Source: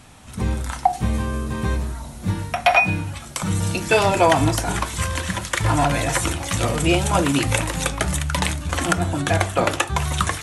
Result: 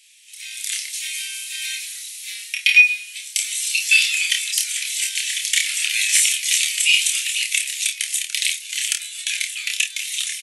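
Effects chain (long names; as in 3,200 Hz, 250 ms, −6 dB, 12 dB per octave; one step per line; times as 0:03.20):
Butterworth high-pass 2,200 Hz 48 dB per octave
automatic gain control gain up to 13.5 dB
on a send: ambience of single reflections 28 ms −3.5 dB, 52 ms −12.5 dB
on the sum: level −1 dB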